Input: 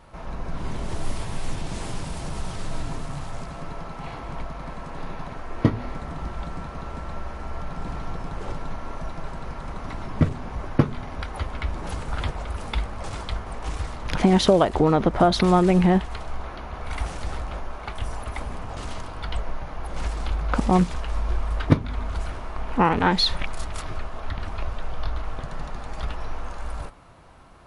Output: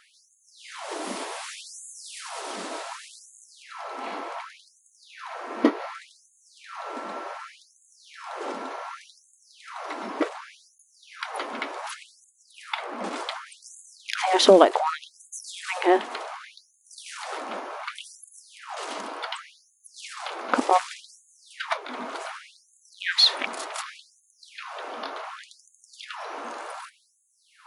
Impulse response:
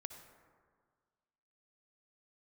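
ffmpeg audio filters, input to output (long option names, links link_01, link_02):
-filter_complex "[0:a]asettb=1/sr,asplit=3[link_01][link_02][link_03];[link_01]atrim=end=11.944[link_04];[link_02]atrim=start=11.94:end=13.16,asetpts=PTS-STARTPTS,afade=type=in:duration=0.004:curve=qsin,afade=type=out:start_time=1.216:duration=0.004:curve=qsin,bass=frequency=250:gain=14,treble=frequency=4000:gain=-7[link_05];[link_03]atrim=start=13.156[link_06];[link_04][link_05]acrossfade=duration=0.004:curve1=hsin:curve2=qsin[link_07];[link_07][link_06]acrossfade=duration=0.004:curve1=qsin:curve2=hsin,afftfilt=real='re*gte(b*sr/1024,210*pow(6400/210,0.5+0.5*sin(2*PI*0.67*pts/sr)))':imag='im*gte(b*sr/1024,210*pow(6400/210,0.5+0.5*sin(2*PI*0.67*pts/sr)))':win_size=1024:overlap=0.75,volume=4dB"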